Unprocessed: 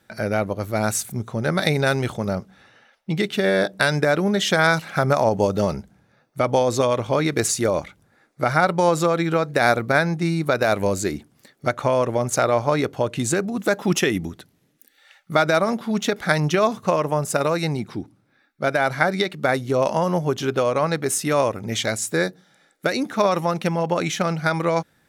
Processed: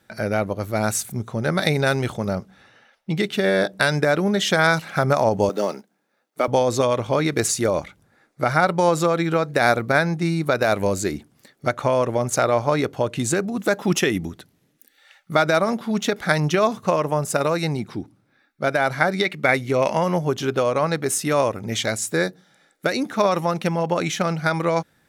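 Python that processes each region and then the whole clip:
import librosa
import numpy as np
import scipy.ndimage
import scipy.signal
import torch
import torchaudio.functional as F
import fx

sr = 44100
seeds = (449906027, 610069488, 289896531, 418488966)

y = fx.chain(x, sr, fx.law_mismatch(coded='A'),
    fx.highpass(hz=240.0, slope=24), at=(5.49, 6.48))
y = fx.chain(y, sr, fx.peak_eq(hz=2200.0, db=10.5, octaves=0.48),
    fx.gate_hold(open_db=-24.0, close_db=-30.0, hold_ms=71.0, range_db=-21, attack_ms=1.4, release_ms=100.0), at=(19.24, 20.16))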